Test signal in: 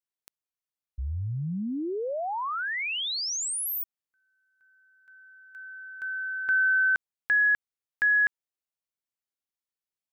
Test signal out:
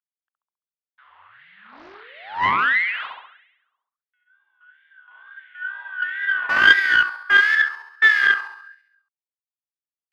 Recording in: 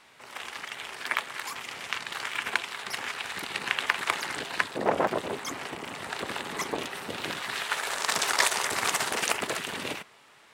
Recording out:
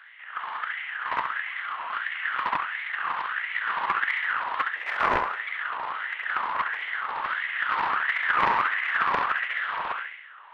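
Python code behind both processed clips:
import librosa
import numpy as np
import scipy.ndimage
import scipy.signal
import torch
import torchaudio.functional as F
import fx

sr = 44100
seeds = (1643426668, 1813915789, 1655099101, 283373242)

p1 = fx.cvsd(x, sr, bps=16000)
p2 = scipy.signal.sosfilt(scipy.signal.butter(4, 100.0, 'highpass', fs=sr, output='sos'), p1)
p3 = fx.peak_eq(p2, sr, hz=2400.0, db=-10.5, octaves=0.3)
p4 = 10.0 ** (-24.0 / 20.0) * (np.abs((p3 / 10.0 ** (-24.0 / 20.0) + 3.0) % 4.0 - 2.0) - 1.0)
p5 = p3 + (p4 * 10.0 ** (-6.5 / 20.0))
p6 = fx.wow_flutter(p5, sr, seeds[0], rate_hz=2.1, depth_cents=85.0)
p7 = p6 + fx.room_flutter(p6, sr, wall_m=11.6, rt60_s=0.84, dry=0)
p8 = fx.filter_lfo_highpass(p7, sr, shape='sine', hz=1.5, low_hz=960.0, high_hz=2100.0, q=5.8)
p9 = fx.doppler_dist(p8, sr, depth_ms=0.45)
y = p9 * 10.0 ** (-3.0 / 20.0)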